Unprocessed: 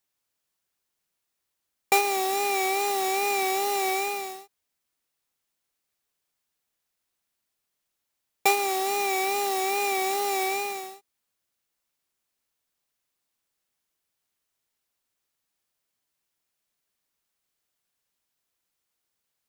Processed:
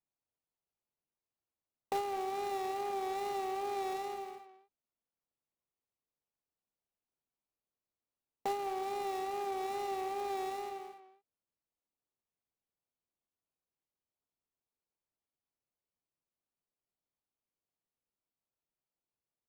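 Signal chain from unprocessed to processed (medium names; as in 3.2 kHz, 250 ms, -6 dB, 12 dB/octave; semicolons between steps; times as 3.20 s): median filter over 25 samples; speakerphone echo 210 ms, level -10 dB; trim -8.5 dB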